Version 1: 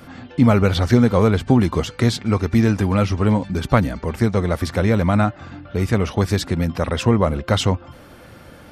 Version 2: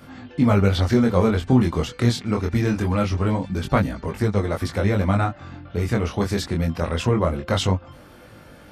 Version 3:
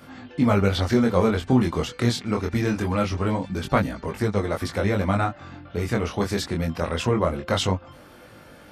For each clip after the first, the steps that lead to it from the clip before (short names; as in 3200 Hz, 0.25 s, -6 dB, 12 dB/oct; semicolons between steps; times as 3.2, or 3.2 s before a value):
chorus 0.23 Hz, delay 19.5 ms, depth 5.2 ms
low shelf 170 Hz -6 dB